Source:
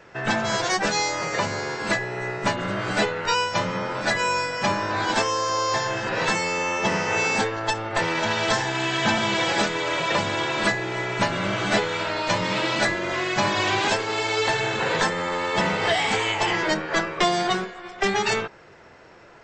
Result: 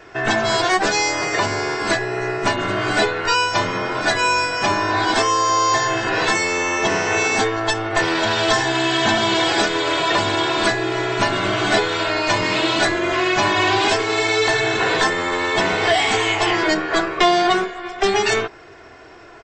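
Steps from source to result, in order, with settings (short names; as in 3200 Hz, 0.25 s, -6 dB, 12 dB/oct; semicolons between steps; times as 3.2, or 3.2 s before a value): comb 2.8 ms, depth 58%; in parallel at -2 dB: limiter -15.5 dBFS, peak gain reduction 10 dB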